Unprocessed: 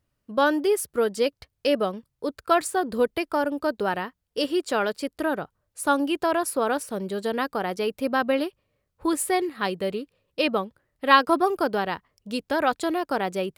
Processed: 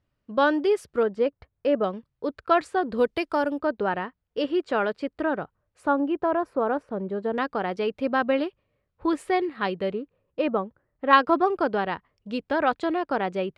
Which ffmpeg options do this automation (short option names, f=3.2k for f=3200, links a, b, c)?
-af "asetnsamples=n=441:p=0,asendcmd='1.03 lowpass f 1600;1.84 lowpass f 3200;2.98 lowpass f 6400;3.58 lowpass f 2500;5.87 lowpass f 1300;7.38 lowpass f 3200;9.93 lowpass f 1500;11.13 lowpass f 3000',lowpass=4k"